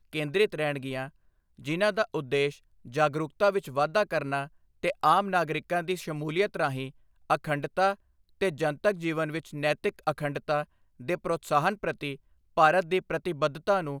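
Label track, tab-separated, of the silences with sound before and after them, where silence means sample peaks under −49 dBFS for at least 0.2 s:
1.090000	1.590000	silence
2.580000	2.850000	silence
4.480000	4.830000	silence
6.910000	7.300000	silence
7.950000	8.410000	silence
10.640000	11.000000	silence
12.160000	12.570000	silence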